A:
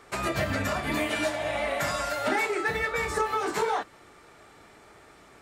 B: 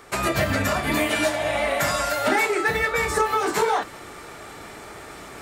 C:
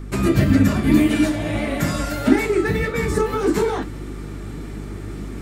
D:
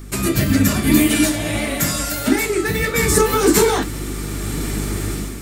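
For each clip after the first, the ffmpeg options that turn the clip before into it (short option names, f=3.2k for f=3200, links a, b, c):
-af "highshelf=f=11k:g=8.5,areverse,acompressor=mode=upward:threshold=-36dB:ratio=2.5,areverse,volume=5.5dB"
-af "lowshelf=f=440:t=q:w=1.5:g=13,aeval=exprs='val(0)+0.0447*(sin(2*PI*50*n/s)+sin(2*PI*2*50*n/s)/2+sin(2*PI*3*50*n/s)/3+sin(2*PI*4*50*n/s)/4+sin(2*PI*5*50*n/s)/5)':c=same,flanger=delay=2.7:depth=9.2:regen=75:speed=1.7:shape=triangular,volume=1dB"
-af "dynaudnorm=f=390:g=3:m=11dB,crystalizer=i=4:c=0,volume=-2.5dB"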